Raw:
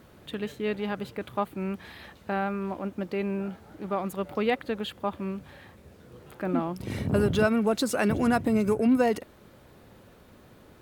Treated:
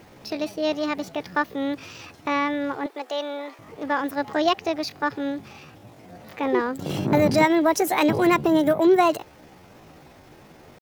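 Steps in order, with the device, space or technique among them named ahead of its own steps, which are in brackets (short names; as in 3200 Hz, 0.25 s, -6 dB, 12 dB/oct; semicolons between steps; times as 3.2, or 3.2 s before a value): 2.87–3.61 Bessel high-pass 380 Hz, order 4; chipmunk voice (pitch shift +6.5 st); gain +5 dB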